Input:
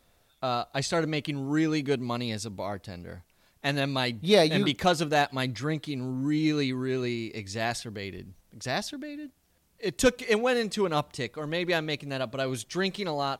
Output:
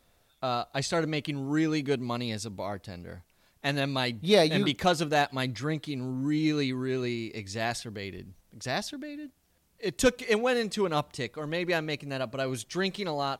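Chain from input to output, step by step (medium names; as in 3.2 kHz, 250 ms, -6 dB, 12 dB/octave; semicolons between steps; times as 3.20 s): 11.55–12.58 s: band-stop 3.5 kHz, Q 6.5; trim -1 dB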